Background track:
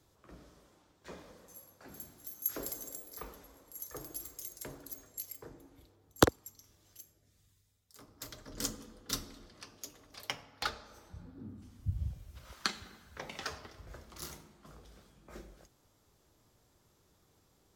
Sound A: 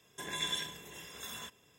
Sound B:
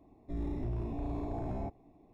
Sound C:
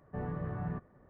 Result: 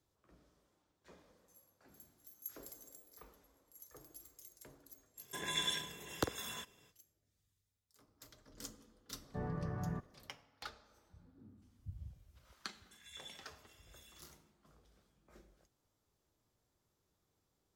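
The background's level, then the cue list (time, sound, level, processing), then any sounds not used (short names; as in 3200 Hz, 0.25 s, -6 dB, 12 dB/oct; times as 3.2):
background track -12.5 dB
5.15 add A -1 dB, fades 0.05 s
9.21 add C -3 dB
12.73 add A -17 dB + inverse Chebyshev high-pass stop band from 540 Hz, stop band 60 dB
not used: B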